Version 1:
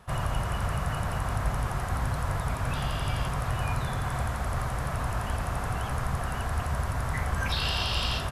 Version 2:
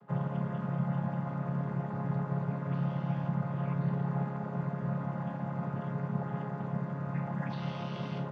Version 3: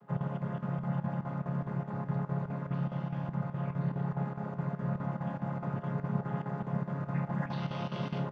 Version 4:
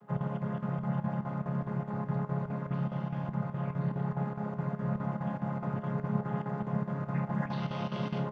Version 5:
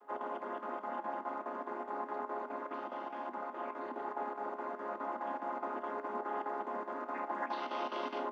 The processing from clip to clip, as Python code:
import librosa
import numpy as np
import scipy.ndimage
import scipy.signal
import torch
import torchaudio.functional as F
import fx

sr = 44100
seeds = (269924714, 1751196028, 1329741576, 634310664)

y1 = fx.chord_vocoder(x, sr, chord='major triad', root=49)
y1 = fx.lowpass(y1, sr, hz=1100.0, slope=6)
y2 = fx.rider(y1, sr, range_db=10, speed_s=2.0)
y2 = fx.chopper(y2, sr, hz=4.8, depth_pct=65, duty_pct=80)
y3 = fx.comb_fb(y2, sr, f0_hz=210.0, decay_s=0.19, harmonics='all', damping=0.0, mix_pct=50)
y3 = y3 * 10.0 ** (5.5 / 20.0)
y4 = scipy.signal.sosfilt(scipy.signal.cheby1(6, 6, 240.0, 'highpass', fs=sr, output='sos'), y3)
y4 = y4 * 10.0 ** (4.0 / 20.0)